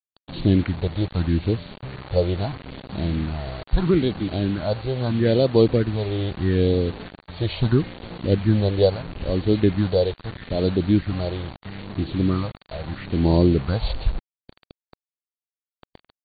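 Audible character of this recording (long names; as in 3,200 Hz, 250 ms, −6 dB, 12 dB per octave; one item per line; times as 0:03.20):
a buzz of ramps at a fixed pitch in blocks of 8 samples
phaser sweep stages 4, 0.77 Hz, lowest notch 240–1,800 Hz
a quantiser's noise floor 6 bits, dither none
AC-3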